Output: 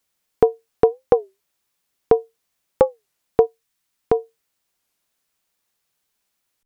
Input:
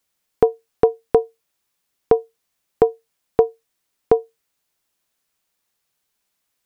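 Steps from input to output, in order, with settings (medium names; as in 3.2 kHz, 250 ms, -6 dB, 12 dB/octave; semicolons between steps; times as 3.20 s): 3.45–4.14 s: peaking EQ 480 Hz -13.5 dB -> -3.5 dB 1.3 oct; warped record 33 1/3 rpm, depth 250 cents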